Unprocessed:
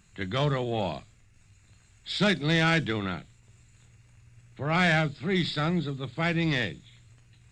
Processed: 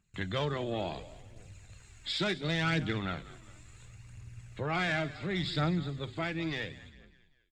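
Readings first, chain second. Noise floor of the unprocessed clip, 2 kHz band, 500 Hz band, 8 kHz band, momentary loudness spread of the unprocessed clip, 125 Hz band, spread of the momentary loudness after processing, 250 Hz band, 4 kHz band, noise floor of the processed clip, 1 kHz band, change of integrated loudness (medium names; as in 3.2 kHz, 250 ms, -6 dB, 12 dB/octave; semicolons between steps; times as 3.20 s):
-60 dBFS, -7.0 dB, -5.5 dB, -5.0 dB, 11 LU, -6.0 dB, 22 LU, -6.5 dB, -5.0 dB, -64 dBFS, -6.0 dB, -6.5 dB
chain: fade out at the end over 1.82 s; gate with hold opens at -50 dBFS; compression 2:1, threshold -41 dBFS, peak gain reduction 12 dB; frequency-shifting echo 199 ms, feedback 47%, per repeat -37 Hz, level -17 dB; phaser 0.71 Hz, delay 3.6 ms, feedback 39%; trim +3.5 dB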